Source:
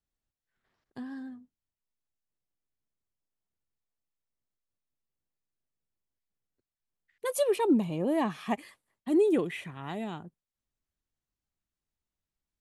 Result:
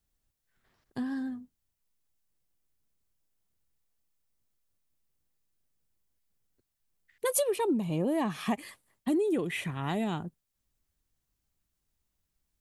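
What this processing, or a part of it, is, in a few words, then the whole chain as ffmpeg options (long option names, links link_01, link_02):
ASMR close-microphone chain: -af "lowshelf=frequency=160:gain=6,acompressor=threshold=-31dB:ratio=6,highshelf=frequency=6700:gain=7,volume=5dB"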